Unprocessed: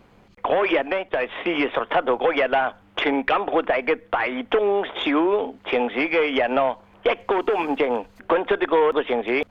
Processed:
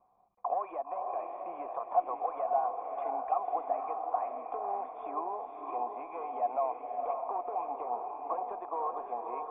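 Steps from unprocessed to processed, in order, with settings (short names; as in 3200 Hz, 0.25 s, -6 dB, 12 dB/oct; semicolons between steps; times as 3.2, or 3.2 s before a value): vocal tract filter a; diffused feedback echo 0.542 s, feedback 45%, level -4 dB; gain -2.5 dB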